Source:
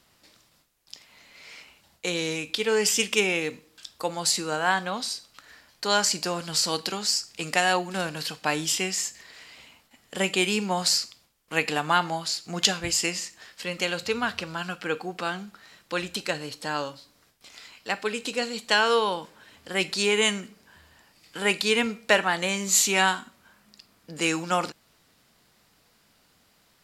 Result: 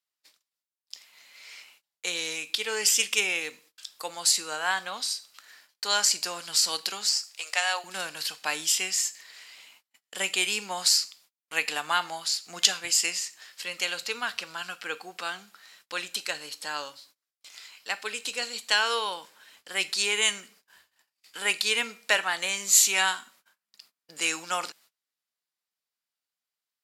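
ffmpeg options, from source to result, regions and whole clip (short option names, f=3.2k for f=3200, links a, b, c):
-filter_complex "[0:a]asettb=1/sr,asplit=3[a][b][c];[a]atrim=end=7.094[d];[b]atrim=start=7.09:end=7.84,asetpts=PTS-STARTPTS,afade=t=in:d=0.004:c=qsin,afade=t=out:st=0.746:d=0.004:c=qsin,aeval=exprs='if(lt(val(0),0),0.708*val(0),val(0))':c=same,highpass=f=510:w=0.5412,highpass=f=510:w=1.3066,acrossover=split=8300[e][f];[f]acompressor=threshold=-48dB:ratio=4:attack=1:release=60[g];[e][g]amix=inputs=2:normalize=0[h];[c]atrim=start=7.836[i];[d][h]acrossfade=d=0.004:c1=hsin:c2=qsin[j];[j][i]acrossfade=d=0.004:c1=qsin:c2=hsin,highpass=f=1.4k:p=1,agate=range=-27dB:threshold=-57dB:ratio=16:detection=peak,highshelf=f=6.9k:g=4.5"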